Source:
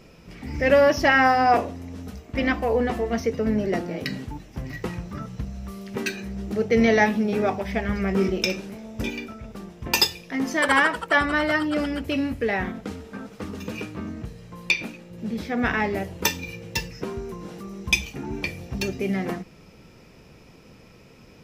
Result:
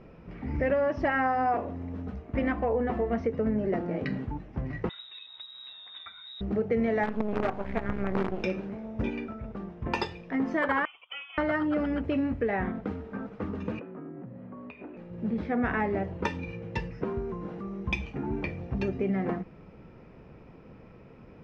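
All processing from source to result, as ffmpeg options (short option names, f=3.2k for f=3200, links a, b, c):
-filter_complex "[0:a]asettb=1/sr,asplit=3[a][b][c];[a]atrim=end=4.894[d];[b]atrim=start=4.89:end=6.41,asetpts=PTS-STARTPTS,afade=t=in:d=0.004:c=qsin,afade=t=out:st=1.516:d=0.004:c=qsin,lowshelf=f=450:t=q:w=1.5:g=7,acrossover=split=96|280[e][f][g];[e]acompressor=threshold=-32dB:ratio=4[h];[f]acompressor=threshold=-34dB:ratio=4[i];[g]acompressor=threshold=-40dB:ratio=4[j];[h][i][j]amix=inputs=3:normalize=0,lowpass=f=3.3k:t=q:w=0.5098,lowpass=f=3.3k:t=q:w=0.6013,lowpass=f=3.3k:t=q:w=0.9,lowpass=f=3.3k:t=q:w=2.563,afreqshift=-3900[k];[c]atrim=start=6.406[l];[d][k]acrossfade=d=0.004:c1=hsin:c2=qsin[m];[m][l]acrossfade=d=0.004:c1=qsin:c2=hsin,asettb=1/sr,asplit=3[n][o][p];[n]atrim=end=7.034[q];[o]atrim=start=7.03:end=8.44,asetpts=PTS-STARTPTS,afade=t=in:d=0.004:c=qsin,afade=t=out:st=1.406:d=0.004:c=qsin,lowpass=3.5k,acrusher=bits=4:dc=4:mix=0:aa=0.000001[r];[p]atrim=start=8.436[s];[q][r]acrossfade=d=0.004:c1=hsin:c2=qsin[t];[t][s]acrossfade=d=0.004:c1=qsin:c2=hsin,asettb=1/sr,asplit=3[u][v][w];[u]atrim=end=10.854[x];[v]atrim=start=10.85:end=11.38,asetpts=PTS-STARTPTS,afade=t=in:d=0.004:c=qsin,afade=t=out:st=0.526:d=0.004:c=qsin,asplit=3[y][z][aa];[y]bandpass=f=730:t=q:w=8,volume=0dB[ab];[z]bandpass=f=1.09k:t=q:w=8,volume=-6dB[ac];[aa]bandpass=f=2.44k:t=q:w=8,volume=-9dB[ad];[ab][ac][ad]amix=inputs=3:normalize=0,lowpass=f=3.1k:t=q:w=0.5098,lowpass=f=3.1k:t=q:w=0.6013,lowpass=f=3.1k:t=q:w=0.9,lowpass=f=3.1k:t=q:w=2.563,afreqshift=-3700[ae];[w]atrim=start=11.376[af];[x][ae]acrossfade=d=0.004:c1=hsin:c2=qsin[ag];[ag][af]acrossfade=d=0.004:c1=qsin:c2=hsin,asettb=1/sr,asplit=3[ah][ai][aj];[ah]atrim=end=13.794[ak];[ai]atrim=start=13.79:end=14.97,asetpts=PTS-STARTPTS,afade=t=in:d=0.004:c=qsin,afade=t=out:st=1.176:d=0.004:c=qsin,lowpass=1.8k,acompressor=threshold=-39dB:ratio=4:attack=3.2:release=140:knee=1:detection=peak,afreqshift=71[al];[aj]atrim=start=14.966[am];[ak][al]acrossfade=d=0.004:c1=hsin:c2=qsin[an];[an][am]acrossfade=d=0.004:c1=qsin:c2=hsin,lowpass=1.6k,acompressor=threshold=-24dB:ratio=5"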